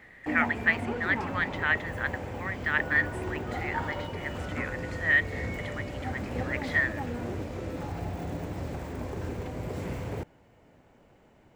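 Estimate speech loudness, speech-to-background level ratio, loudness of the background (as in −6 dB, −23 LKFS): −29.5 LKFS, 6.0 dB, −35.5 LKFS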